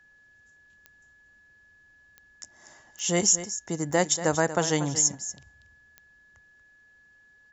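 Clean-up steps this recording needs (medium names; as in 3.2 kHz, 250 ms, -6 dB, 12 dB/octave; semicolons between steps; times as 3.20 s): de-click; band-stop 1.7 kHz, Q 30; inverse comb 236 ms -12.5 dB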